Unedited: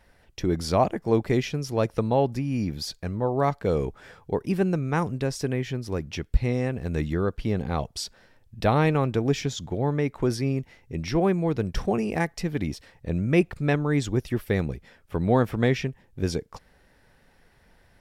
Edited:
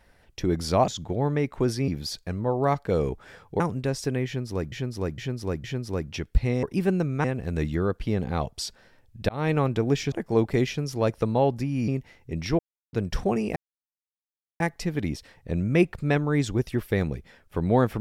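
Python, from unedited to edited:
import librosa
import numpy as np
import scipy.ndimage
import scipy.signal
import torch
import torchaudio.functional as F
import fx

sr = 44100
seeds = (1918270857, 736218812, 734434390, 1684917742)

y = fx.edit(x, sr, fx.swap(start_s=0.88, length_s=1.76, other_s=9.5, other_length_s=1.0),
    fx.move(start_s=4.36, length_s=0.61, to_s=6.62),
    fx.repeat(start_s=5.63, length_s=0.46, count=4),
    fx.fade_in_span(start_s=8.67, length_s=0.27),
    fx.silence(start_s=11.21, length_s=0.34),
    fx.insert_silence(at_s=12.18, length_s=1.04), tone=tone)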